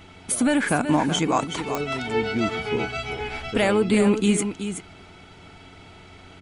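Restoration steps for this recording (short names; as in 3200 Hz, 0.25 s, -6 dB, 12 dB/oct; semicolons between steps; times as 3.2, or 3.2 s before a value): de-click; de-hum 91.3 Hz, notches 4; inverse comb 0.375 s -9 dB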